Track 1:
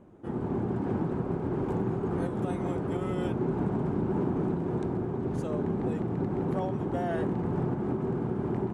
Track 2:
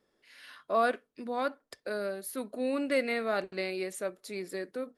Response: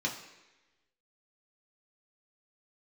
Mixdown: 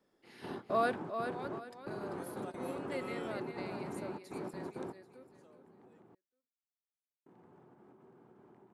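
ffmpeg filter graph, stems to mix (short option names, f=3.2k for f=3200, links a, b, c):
-filter_complex "[0:a]highpass=f=590:p=1,acompressor=threshold=-40dB:ratio=6,volume=1.5dB,asplit=3[a][b][c];[a]atrim=end=6.15,asetpts=PTS-STARTPTS,afade=t=out:st=6.146:d=0.004:c=hsin[d];[b]atrim=start=6.15:end=7.26,asetpts=PTS-STARTPTS,volume=0[e];[c]atrim=start=7.26,asetpts=PTS-STARTPTS,afade=t=in:d=0.004:c=hsin[f];[d][e][f]concat=n=3:v=0:a=1[g];[1:a]volume=-4dB,afade=t=out:st=0.8:d=0.53:silence=0.334965,asplit=3[h][i][j];[i]volume=-7.5dB[k];[j]apad=whole_len=385199[l];[g][l]sidechaingate=range=-19dB:threshold=-55dB:ratio=16:detection=peak[m];[k]aecho=0:1:392|784|1176|1568:1|0.3|0.09|0.027[n];[m][h][n]amix=inputs=3:normalize=0"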